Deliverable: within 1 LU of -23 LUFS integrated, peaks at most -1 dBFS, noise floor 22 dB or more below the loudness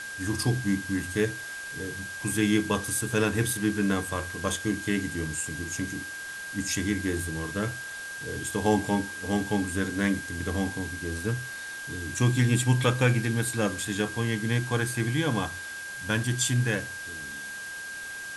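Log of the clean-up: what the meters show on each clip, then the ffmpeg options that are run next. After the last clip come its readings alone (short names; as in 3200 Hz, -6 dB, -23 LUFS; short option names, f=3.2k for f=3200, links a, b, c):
steady tone 1600 Hz; tone level -36 dBFS; noise floor -38 dBFS; noise floor target -51 dBFS; loudness -28.5 LUFS; peak -9.5 dBFS; loudness target -23.0 LUFS
-> -af "bandreject=f=1.6k:w=30"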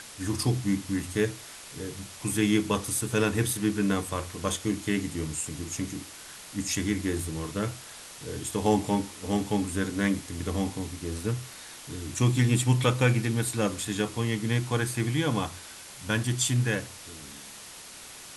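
steady tone none; noise floor -45 dBFS; noise floor target -51 dBFS
-> -af "afftdn=nr=6:nf=-45"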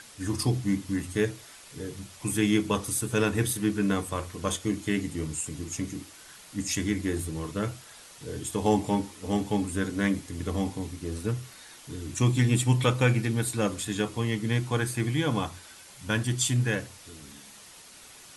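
noise floor -50 dBFS; noise floor target -51 dBFS
-> -af "afftdn=nr=6:nf=-50"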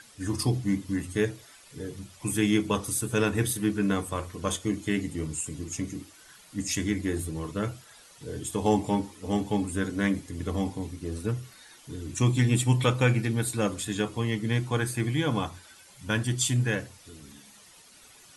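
noise floor -54 dBFS; loudness -28.5 LUFS; peak -10.0 dBFS; loudness target -23.0 LUFS
-> -af "volume=5.5dB"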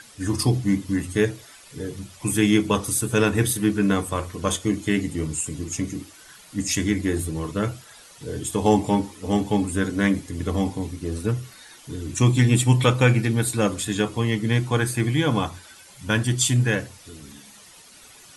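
loudness -23.0 LUFS; peak -4.5 dBFS; noise floor -48 dBFS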